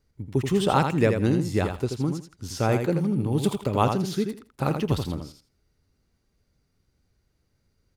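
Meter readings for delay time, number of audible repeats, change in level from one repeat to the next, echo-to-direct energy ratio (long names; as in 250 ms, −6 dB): 82 ms, 2, −15.5 dB, −6.5 dB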